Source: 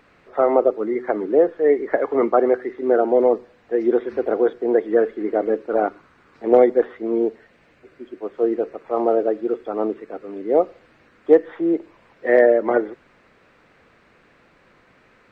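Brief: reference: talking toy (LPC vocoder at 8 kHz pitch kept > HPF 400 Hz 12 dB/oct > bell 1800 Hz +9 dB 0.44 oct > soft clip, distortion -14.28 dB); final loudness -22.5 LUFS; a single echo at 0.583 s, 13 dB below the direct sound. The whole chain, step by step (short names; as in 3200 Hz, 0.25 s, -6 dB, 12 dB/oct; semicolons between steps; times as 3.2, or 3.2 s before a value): echo 0.583 s -13 dB; LPC vocoder at 8 kHz pitch kept; HPF 400 Hz 12 dB/oct; bell 1800 Hz +9 dB 0.44 oct; soft clip -11.5 dBFS; gain +1.5 dB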